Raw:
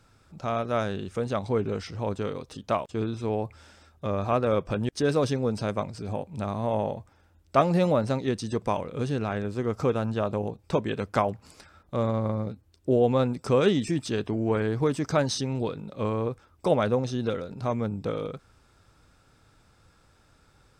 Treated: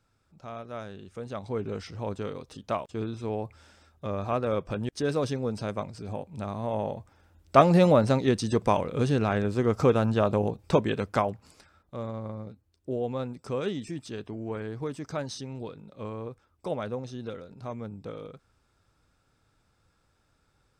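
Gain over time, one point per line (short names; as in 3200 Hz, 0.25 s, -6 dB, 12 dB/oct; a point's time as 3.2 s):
0.98 s -11.5 dB
1.77 s -3.5 dB
6.72 s -3.5 dB
7.58 s +3.5 dB
10.72 s +3.5 dB
11.98 s -9 dB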